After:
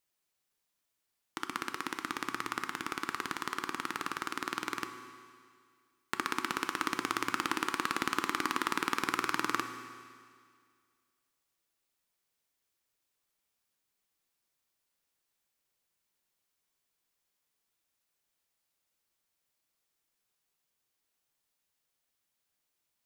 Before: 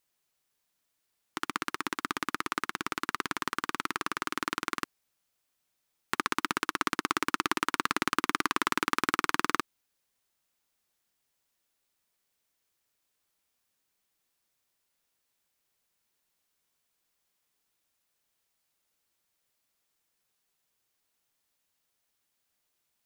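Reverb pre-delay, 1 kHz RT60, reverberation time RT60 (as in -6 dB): 8 ms, 2.0 s, 2.0 s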